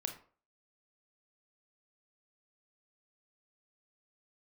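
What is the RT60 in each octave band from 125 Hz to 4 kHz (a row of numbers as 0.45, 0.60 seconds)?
0.40, 0.40, 0.45, 0.40, 0.35, 0.25 seconds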